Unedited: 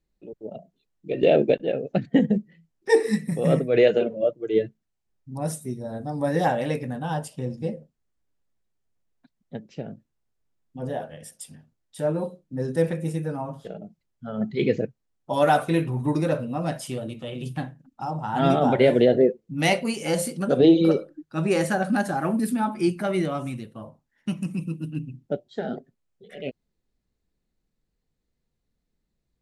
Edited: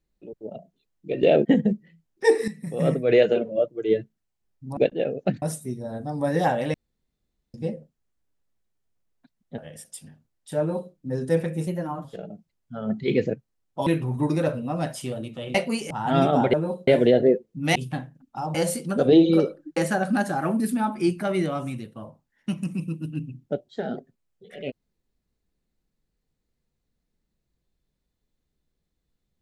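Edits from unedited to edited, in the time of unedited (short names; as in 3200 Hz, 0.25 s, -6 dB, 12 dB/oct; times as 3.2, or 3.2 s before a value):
1.45–2.1 move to 5.42
3.13–3.64 fade in, from -14.5 dB
6.74–7.54 room tone
9.58–11.05 cut
12.06–12.4 copy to 18.82
13.14–13.56 speed 112%
15.38–15.72 cut
17.4–18.19 swap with 19.7–20.06
21.28–21.56 cut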